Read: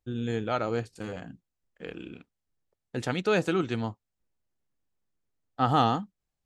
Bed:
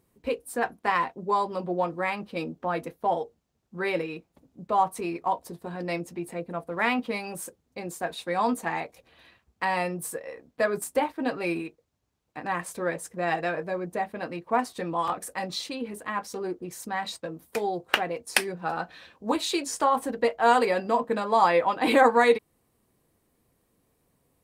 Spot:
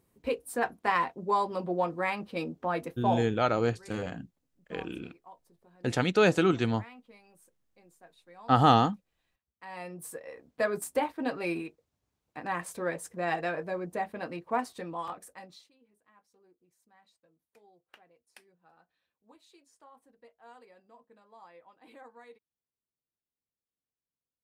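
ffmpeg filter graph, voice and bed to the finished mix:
-filter_complex "[0:a]adelay=2900,volume=1.33[s0];[1:a]volume=9.44,afade=t=out:st=3.19:d=0.37:silence=0.0707946,afade=t=in:st=9.58:d=0.89:silence=0.0841395,afade=t=out:st=14.34:d=1.37:silence=0.0334965[s1];[s0][s1]amix=inputs=2:normalize=0"

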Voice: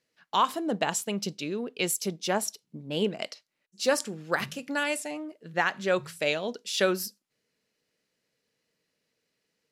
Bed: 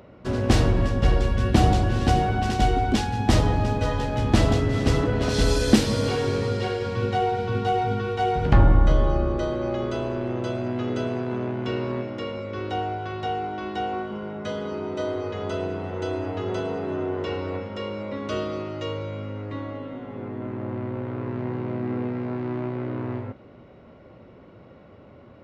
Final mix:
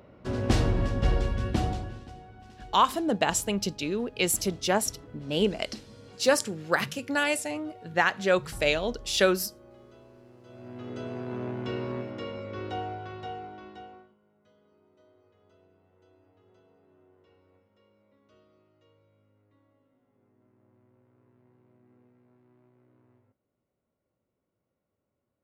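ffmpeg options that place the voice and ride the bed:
-filter_complex "[0:a]adelay=2400,volume=1.33[s0];[1:a]volume=5.96,afade=t=out:st=1.2:d=0.88:silence=0.0891251,afade=t=in:st=10.44:d=1.05:silence=0.0944061,afade=t=out:st=12.64:d=1.51:silence=0.0354813[s1];[s0][s1]amix=inputs=2:normalize=0"

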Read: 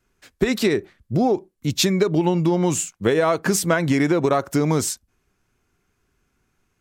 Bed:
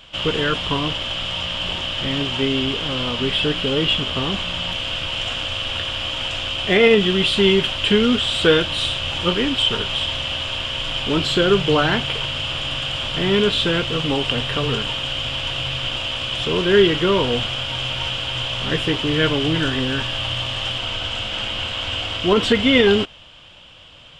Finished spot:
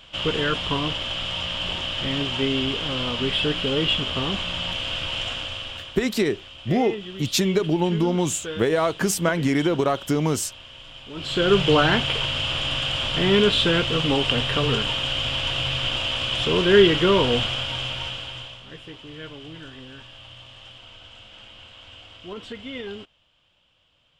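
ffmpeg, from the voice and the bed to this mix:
-filter_complex "[0:a]adelay=5550,volume=0.75[s0];[1:a]volume=5.31,afade=t=out:st=5.17:d=0.84:silence=0.177828,afade=t=in:st=11.14:d=0.46:silence=0.133352,afade=t=out:st=17.38:d=1.25:silence=0.105925[s1];[s0][s1]amix=inputs=2:normalize=0"

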